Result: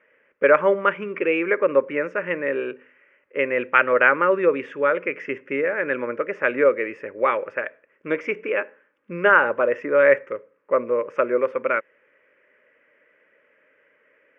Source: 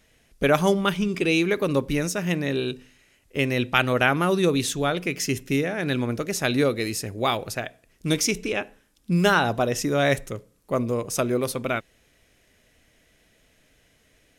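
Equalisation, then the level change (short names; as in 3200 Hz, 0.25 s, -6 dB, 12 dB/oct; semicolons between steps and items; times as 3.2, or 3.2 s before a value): resonant high-pass 570 Hz, resonance Q 4.9; LPF 2300 Hz 24 dB/oct; fixed phaser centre 1700 Hz, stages 4; +6.0 dB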